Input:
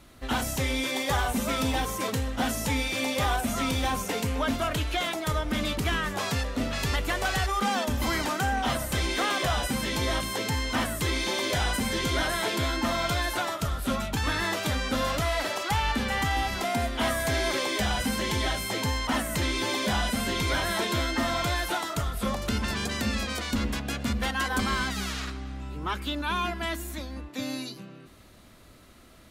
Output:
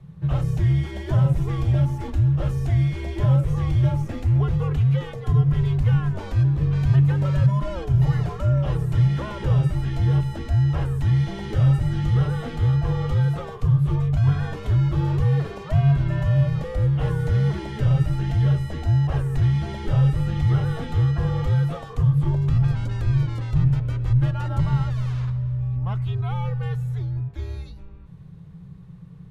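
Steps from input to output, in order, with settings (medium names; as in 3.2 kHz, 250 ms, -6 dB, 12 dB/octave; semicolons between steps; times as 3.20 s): tilt EQ -4.5 dB/octave; frequency shift -190 Hz; trim -5 dB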